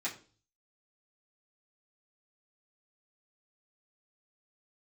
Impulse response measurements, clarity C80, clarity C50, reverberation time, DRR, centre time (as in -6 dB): 16.5 dB, 12.0 dB, 0.40 s, -8.5 dB, 16 ms